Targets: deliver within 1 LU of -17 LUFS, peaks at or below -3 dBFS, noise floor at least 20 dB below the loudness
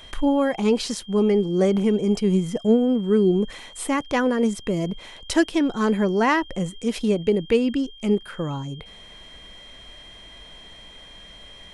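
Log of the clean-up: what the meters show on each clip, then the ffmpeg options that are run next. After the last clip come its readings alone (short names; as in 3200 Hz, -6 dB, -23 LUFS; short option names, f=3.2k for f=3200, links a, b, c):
steady tone 3200 Hz; tone level -44 dBFS; loudness -22.0 LUFS; peak -7.0 dBFS; loudness target -17.0 LUFS
-> -af "bandreject=f=3.2k:w=30"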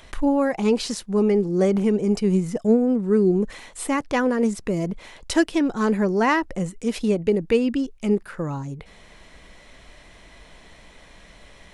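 steady tone none; loudness -22.0 LUFS; peak -7.0 dBFS; loudness target -17.0 LUFS
-> -af "volume=5dB,alimiter=limit=-3dB:level=0:latency=1"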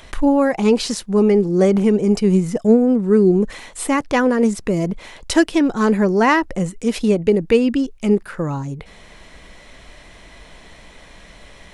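loudness -17.0 LUFS; peak -3.0 dBFS; noise floor -44 dBFS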